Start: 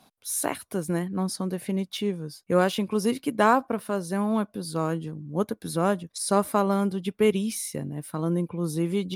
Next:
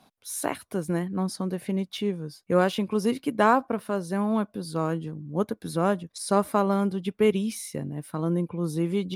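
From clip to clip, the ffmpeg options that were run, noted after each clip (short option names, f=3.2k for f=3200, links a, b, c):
-af "highshelf=f=5.2k:g=-6"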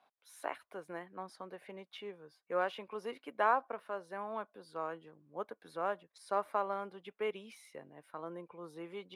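-filter_complex "[0:a]acrossover=split=470 3000:gain=0.0708 1 0.141[a][b][c];[a][b][c]amix=inputs=3:normalize=0,volume=-7.5dB"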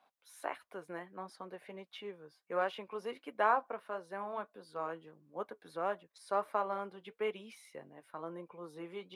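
-af "flanger=delay=3.4:depth=3.6:regen=-67:speed=1.5:shape=triangular,volume=4.5dB"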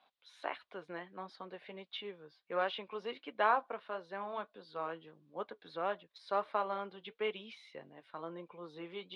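-af "lowpass=f=3.7k:t=q:w=2.8,volume=-1dB"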